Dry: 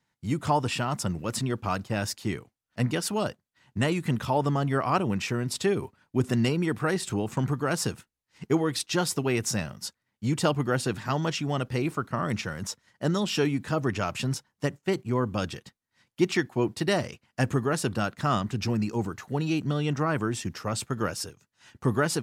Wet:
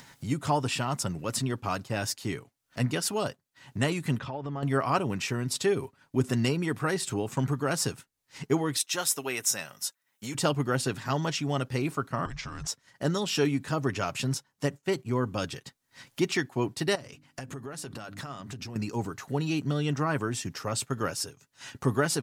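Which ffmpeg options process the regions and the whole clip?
ffmpeg -i in.wav -filter_complex "[0:a]asettb=1/sr,asplit=3[link_01][link_02][link_03];[link_01]atrim=end=4.184[link_04];[link_02]atrim=start=4.18:end=4.63,asetpts=PTS-STARTPTS,afade=type=in:duration=0.004:curve=qsin,afade=type=out:start_time=0.446:duration=0.004:curve=qsin,lowpass=3400,acompressor=threshold=-32dB:ratio=4:attack=3.2:release=140:knee=1:detection=peak[link_05];[link_03]atrim=start=4.626[link_06];[link_04][link_05]acrossfade=duration=0.004:curve1=hsin:curve2=qsin[link_07];[link_07][link_06]acrossfade=duration=0.004:curve1=qsin:curve2=hsin,asettb=1/sr,asplit=3[link_08][link_09][link_10];[link_08]atrim=end=8.774[link_11];[link_09]atrim=start=8.77:end=10.35,asetpts=PTS-STARTPTS,afade=type=in:duration=0.004:curve=qsin,afade=type=out:start_time=1.576:duration=0.004:curve=qsin,highpass=frequency=780:poles=1,highshelf=frequency=11000:gain=10.5,bandreject=frequency=4600:width=8.1[link_12];[link_10]atrim=start=10.346[link_13];[link_11][link_12]acrossfade=duration=0.004:curve1=hsin:curve2=qsin[link_14];[link_14][link_13]acrossfade=duration=0.004:curve1=qsin:curve2=hsin,asettb=1/sr,asplit=3[link_15][link_16][link_17];[link_15]atrim=end=12.254[link_18];[link_16]atrim=start=12.25:end=12.68,asetpts=PTS-STARTPTS,afade=type=in:duration=0.004:curve=qsin,afade=type=out:start_time=0.426:duration=0.004:curve=qsin,lowpass=frequency=7800:width=0.5412,lowpass=frequency=7800:width=1.3066,acompressor=threshold=-32dB:ratio=6:attack=3.2:release=140:knee=1:detection=peak,afreqshift=-250[link_19];[link_17]atrim=start=12.676[link_20];[link_18][link_19]acrossfade=duration=0.004:curve1=hsin:curve2=qsin[link_21];[link_21][link_20]acrossfade=duration=0.004:curve1=qsin:curve2=hsin,asettb=1/sr,asplit=3[link_22][link_23][link_24];[link_22]atrim=end=16.954[link_25];[link_23]atrim=start=16.95:end=18.76,asetpts=PTS-STARTPTS,afade=type=in:duration=0.004:curve=qsin,afade=type=out:start_time=1.806:duration=0.004:curve=qsin,bandreject=frequency=50:width_type=h:width=6,bandreject=frequency=100:width_type=h:width=6,bandreject=frequency=150:width_type=h:width=6,bandreject=frequency=200:width_type=h:width=6,bandreject=frequency=250:width_type=h:width=6,bandreject=frequency=300:width_type=h:width=6,acompressor=threshold=-39dB:ratio=6:attack=3.2:release=140:knee=1:detection=peak[link_26];[link_24]atrim=start=18.756[link_27];[link_25][link_26]acrossfade=duration=0.004:curve1=hsin:curve2=qsin[link_28];[link_28][link_27]acrossfade=duration=0.004:curve1=qsin:curve2=hsin,bass=frequency=250:gain=-2,treble=frequency=4000:gain=3,aecho=1:1:7.3:0.32,acompressor=mode=upward:threshold=-31dB:ratio=2.5,volume=-1.5dB" out.wav

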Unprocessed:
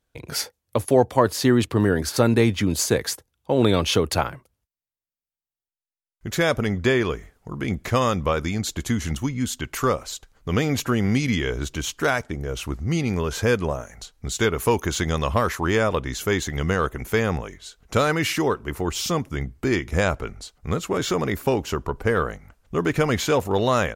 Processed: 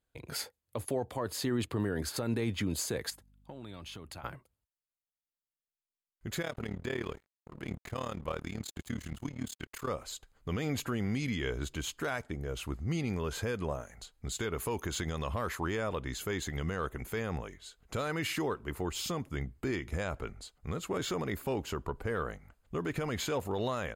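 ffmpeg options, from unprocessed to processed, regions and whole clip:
ffmpeg -i in.wav -filter_complex "[0:a]asettb=1/sr,asplit=3[link_01][link_02][link_03];[link_01]atrim=end=3.104[link_04];[link_02]atrim=start=3.1:end=4.24,asetpts=PTS-STARTPTS,afade=type=in:duration=0.004:curve=qsin,afade=type=out:start_time=1.136:duration=0.004:curve=qsin,equalizer=frequency=460:width=3.2:gain=-9,acompressor=threshold=-35dB:ratio=5:attack=3.2:release=140:knee=1:detection=peak,aeval=exprs='val(0)+0.002*(sin(2*PI*50*n/s)+sin(2*PI*2*50*n/s)/2+sin(2*PI*3*50*n/s)/3+sin(2*PI*4*50*n/s)/4+sin(2*PI*5*50*n/s)/5)':channel_layout=same[link_05];[link_03]atrim=start=4.236[link_06];[link_04][link_05]acrossfade=duration=0.004:curve1=hsin:curve2=qsin[link_07];[link_07][link_06]acrossfade=duration=0.004:curve1=qsin:curve2=hsin,asettb=1/sr,asplit=3[link_08][link_09][link_10];[link_08]atrim=end=6.424[link_11];[link_09]atrim=start=6.42:end=9.89,asetpts=PTS-STARTPTS,afade=type=in:duration=0.004:curve=qsin,afade=type=out:start_time=3.466:duration=0.004:curve=qsin,aeval=exprs='sgn(val(0))*max(abs(val(0))-0.0119,0)':channel_layout=same,tremolo=f=37:d=0.919[link_12];[link_10]atrim=start=9.886[link_13];[link_11][link_12]acrossfade=duration=0.004:curve1=hsin:curve2=qsin[link_14];[link_14][link_13]acrossfade=duration=0.004:curve1=qsin:curve2=hsin,alimiter=limit=-14.5dB:level=0:latency=1:release=67,bandreject=frequency=5700:width=6.2,volume=-8.5dB" out.wav

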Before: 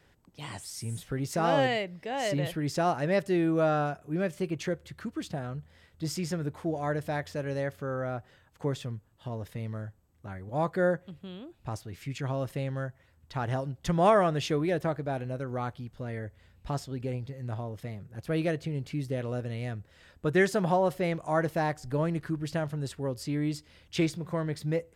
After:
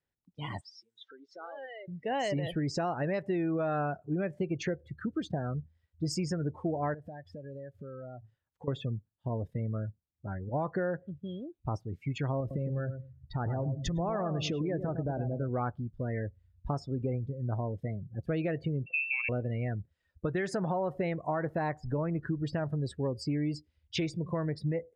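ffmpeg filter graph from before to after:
ffmpeg -i in.wav -filter_complex "[0:a]asettb=1/sr,asplit=3[link_01][link_02][link_03];[link_01]atrim=end=0.614[link_04];[link_02]atrim=start=0.61:end=1.88,asetpts=PTS-STARTPTS,afade=type=in:duration=0.004:curve=qsin,afade=type=out:start_time=1.266:duration=0.004:curve=qsin,acompressor=threshold=-40dB:ratio=8:attack=3.2:release=140:knee=1:detection=peak,highpass=450,equalizer=frequency=750:width_type=q:width=4:gain=-5,equalizer=frequency=1500:width_type=q:width=4:gain=4,equalizer=frequency=2500:width_type=q:width=4:gain=-7,equalizer=frequency=3600:width_type=q:width=4:gain=6,lowpass=frequency=5900:width=0.5412,lowpass=frequency=5900:width=1.3066[link_05];[link_03]atrim=start=1.876[link_06];[link_04][link_05]acrossfade=duration=0.004:curve1=hsin:curve2=qsin[link_07];[link_07][link_06]acrossfade=duration=0.004:curve1=qsin:curve2=hsin,asettb=1/sr,asplit=3[link_08][link_09][link_10];[link_08]atrim=end=6.944[link_11];[link_09]atrim=start=6.94:end=8.68,asetpts=PTS-STARTPTS,afade=type=in:duration=0.004:curve=qsin,afade=type=out:start_time=1.736:duration=0.004:curve=qsin,bandreject=frequency=109.9:width_type=h:width=4,bandreject=frequency=219.8:width_type=h:width=4,bandreject=frequency=329.7:width_type=h:width=4,acompressor=threshold=-43dB:ratio=8:attack=3.2:release=140:knee=1:detection=peak[link_12];[link_10]atrim=start=8.676[link_13];[link_11][link_12]acrossfade=duration=0.004:curve1=hsin:curve2=qsin[link_14];[link_14][link_13]acrossfade=duration=0.004:curve1=qsin:curve2=hsin,asettb=1/sr,asplit=3[link_15][link_16][link_17];[link_15]atrim=end=12.404[link_18];[link_16]atrim=start=12.4:end=15.49,asetpts=PTS-STARTPTS,afade=type=in:duration=0.004:curve=qsin,afade=type=out:start_time=3.086:duration=0.004:curve=qsin,lowshelf=frequency=340:gain=5,acompressor=threshold=-30dB:ratio=8:attack=3.2:release=140:knee=1:detection=peak,asplit=2[link_19][link_20];[link_20]adelay=107,lowpass=frequency=2500:poles=1,volume=-8dB,asplit=2[link_21][link_22];[link_22]adelay=107,lowpass=frequency=2500:poles=1,volume=0.37,asplit=2[link_23][link_24];[link_24]adelay=107,lowpass=frequency=2500:poles=1,volume=0.37,asplit=2[link_25][link_26];[link_26]adelay=107,lowpass=frequency=2500:poles=1,volume=0.37[link_27];[link_19][link_21][link_23][link_25][link_27]amix=inputs=5:normalize=0,atrim=end_sample=136269[link_28];[link_17]atrim=start=15.486[link_29];[link_18][link_28]acrossfade=duration=0.004:curve1=hsin:curve2=qsin[link_30];[link_30][link_29]acrossfade=duration=0.004:curve1=qsin:curve2=hsin,asettb=1/sr,asplit=3[link_31][link_32][link_33];[link_31]atrim=end=18.864[link_34];[link_32]atrim=start=18.86:end=19.29,asetpts=PTS-STARTPTS,afade=type=in:duration=0.004:curve=qsin,afade=type=out:start_time=0.426:duration=0.004:curve=qsin,aeval=exprs='val(0)+0.5*0.00447*sgn(val(0))':channel_layout=same,adynamicsmooth=sensitivity=7:basefreq=830,lowpass=frequency=2400:width_type=q:width=0.5098,lowpass=frequency=2400:width_type=q:width=0.6013,lowpass=frequency=2400:width_type=q:width=0.9,lowpass=frequency=2400:width_type=q:width=2.563,afreqshift=-2800[link_35];[link_33]atrim=start=19.286[link_36];[link_34][link_35]acrossfade=duration=0.004:curve1=hsin:curve2=qsin[link_37];[link_37][link_36]acrossfade=duration=0.004:curve1=qsin:curve2=hsin,afftdn=noise_reduction=30:noise_floor=-41,alimiter=limit=-23dB:level=0:latency=1:release=160,acompressor=threshold=-31dB:ratio=6,volume=3.5dB" out.wav

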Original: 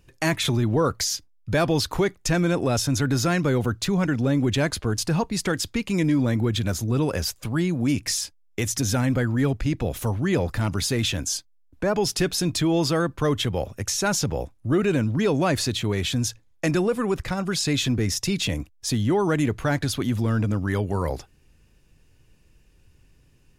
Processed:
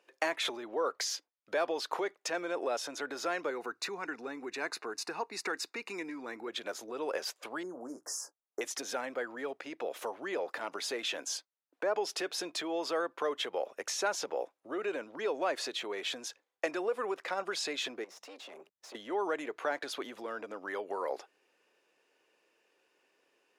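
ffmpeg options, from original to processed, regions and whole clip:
ffmpeg -i in.wav -filter_complex "[0:a]asettb=1/sr,asplit=3[link_01][link_02][link_03];[link_01]atrim=end=3.504[link_04];[link_02]atrim=start=3.5:end=6.48,asetpts=PTS-STARTPTS,afade=type=in:duration=0.004:curve=qsin,afade=type=out:start_time=2.976:duration=0.004:curve=qsin,asuperstop=centerf=3200:order=4:qfactor=4.2,equalizer=frequency=570:width=4:gain=-14.5[link_05];[link_03]atrim=start=6.476[link_06];[link_04][link_05]acrossfade=duration=0.004:curve1=hsin:curve2=qsin[link_07];[link_07][link_06]acrossfade=duration=0.004:curve1=qsin:curve2=hsin,asettb=1/sr,asplit=3[link_08][link_09][link_10];[link_08]atrim=end=7.634[link_11];[link_09]atrim=start=7.63:end=8.61,asetpts=PTS-STARTPTS,afade=type=in:duration=0.004:curve=qsin,afade=type=out:start_time=0.976:duration=0.004:curve=qsin,asuperstop=centerf=2900:order=8:qfactor=0.66,asplit=2[link_12][link_13];[link_13]adelay=16,volume=-9dB[link_14];[link_12][link_14]amix=inputs=2:normalize=0,atrim=end_sample=43218[link_15];[link_10]atrim=start=8.606[link_16];[link_11][link_15]acrossfade=duration=0.004:curve1=hsin:curve2=qsin[link_17];[link_17][link_16]acrossfade=duration=0.004:curve1=qsin:curve2=hsin,asettb=1/sr,asplit=3[link_18][link_19][link_20];[link_18]atrim=end=18.044[link_21];[link_19]atrim=start=18.04:end=18.95,asetpts=PTS-STARTPTS,afade=type=in:duration=0.004:curve=qsin,afade=type=out:start_time=0.906:duration=0.004:curve=qsin,afreqshift=96,acompressor=threshold=-35dB:ratio=6:attack=3.2:release=140:knee=1:detection=peak,aeval=exprs='(tanh(70.8*val(0)+0.55)-tanh(0.55))/70.8':channel_layout=same[link_22];[link_20]atrim=start=18.946[link_23];[link_21][link_22]acrossfade=duration=0.004:curve1=hsin:curve2=qsin[link_24];[link_24][link_23]acrossfade=duration=0.004:curve1=qsin:curve2=hsin,lowpass=frequency=2000:poles=1,acompressor=threshold=-25dB:ratio=6,highpass=frequency=430:width=0.5412,highpass=frequency=430:width=1.3066" out.wav

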